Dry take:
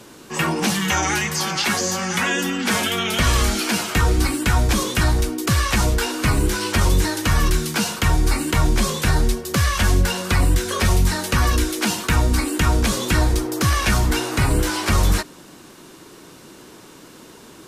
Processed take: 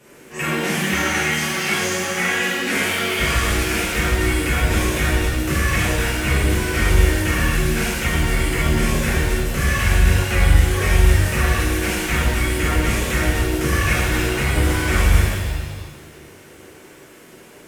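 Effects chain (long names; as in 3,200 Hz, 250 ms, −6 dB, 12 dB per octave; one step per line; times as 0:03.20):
octave-band graphic EQ 250/500/1,000/2,000/4,000 Hz −4/+4/−6/+8/−9 dB
reverb with rising layers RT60 1.6 s, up +7 semitones, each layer −8 dB, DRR −9.5 dB
level −10 dB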